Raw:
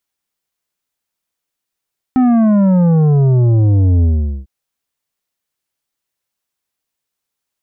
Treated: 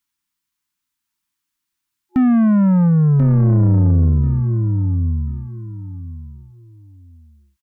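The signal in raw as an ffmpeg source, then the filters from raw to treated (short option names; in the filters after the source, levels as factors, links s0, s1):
-f lavfi -i "aevalsrc='0.355*clip((2.3-t)/0.43,0,1)*tanh(2.82*sin(2*PI*260*2.3/log(65/260)*(exp(log(65/260)*t/2.3)-1)))/tanh(2.82)':d=2.3:s=44100"
-filter_complex "[0:a]afftfilt=real='re*(1-between(b*sr/4096,360,850))':imag='im*(1-between(b*sr/4096,360,850))':win_size=4096:overlap=0.75,asplit=2[s0][s1];[s1]aecho=0:1:1037|2074|3111:0.473|0.104|0.0229[s2];[s0][s2]amix=inputs=2:normalize=0,asoftclip=type=tanh:threshold=0.376"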